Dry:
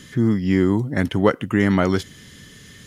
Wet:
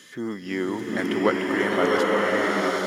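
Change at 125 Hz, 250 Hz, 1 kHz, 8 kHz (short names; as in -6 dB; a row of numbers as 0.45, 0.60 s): -15.5 dB, -6.5 dB, +3.0 dB, n/a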